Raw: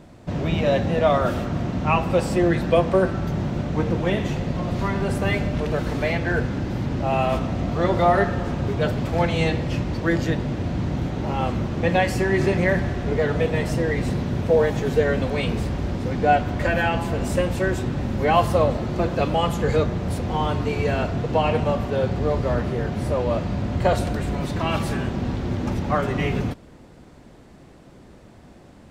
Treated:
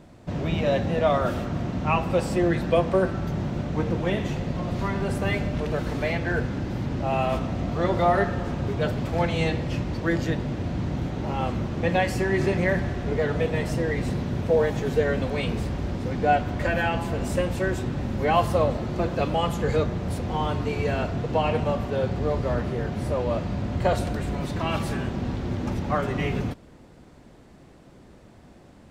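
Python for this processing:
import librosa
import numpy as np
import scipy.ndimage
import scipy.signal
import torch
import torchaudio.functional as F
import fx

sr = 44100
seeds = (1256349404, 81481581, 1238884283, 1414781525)

y = x * 10.0 ** (-3.0 / 20.0)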